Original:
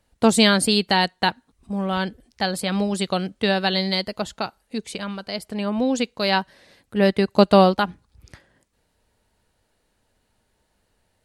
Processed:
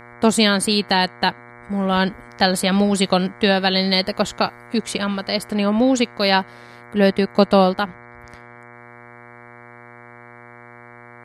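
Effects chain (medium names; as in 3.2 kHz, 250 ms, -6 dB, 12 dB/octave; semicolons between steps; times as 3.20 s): gain riding within 4 dB 0.5 s; mains buzz 120 Hz, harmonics 19, -46 dBFS -1 dB/octave; trim +3.5 dB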